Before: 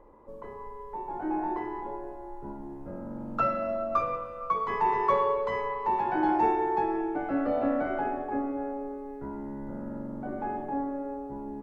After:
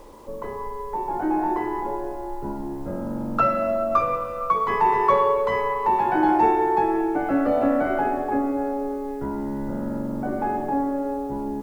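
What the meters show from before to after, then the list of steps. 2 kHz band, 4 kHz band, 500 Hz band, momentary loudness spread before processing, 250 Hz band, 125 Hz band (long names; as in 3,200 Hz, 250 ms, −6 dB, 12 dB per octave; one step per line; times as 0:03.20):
+7.0 dB, can't be measured, +7.0 dB, 16 LU, +7.5 dB, +8.0 dB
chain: in parallel at −1 dB: downward compressor 5 to 1, threshold −35 dBFS, peak gain reduction 13.5 dB
on the sum: bit-depth reduction 10 bits, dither none
level +4.5 dB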